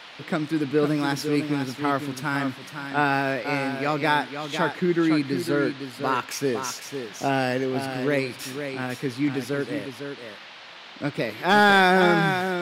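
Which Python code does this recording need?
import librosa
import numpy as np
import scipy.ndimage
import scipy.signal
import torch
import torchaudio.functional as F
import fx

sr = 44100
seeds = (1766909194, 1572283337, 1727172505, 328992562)

y = fx.fix_declip(x, sr, threshold_db=-7.5)
y = fx.noise_reduce(y, sr, print_start_s=10.46, print_end_s=10.96, reduce_db=27.0)
y = fx.fix_echo_inverse(y, sr, delay_ms=504, level_db=-8.0)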